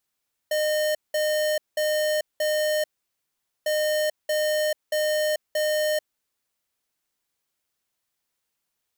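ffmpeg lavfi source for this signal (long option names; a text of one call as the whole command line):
ffmpeg -f lavfi -i "aevalsrc='0.0668*(2*lt(mod(611*t,1),0.5)-1)*clip(min(mod(mod(t,3.15),0.63),0.44-mod(mod(t,3.15),0.63))/0.005,0,1)*lt(mod(t,3.15),2.52)':duration=6.3:sample_rate=44100" out.wav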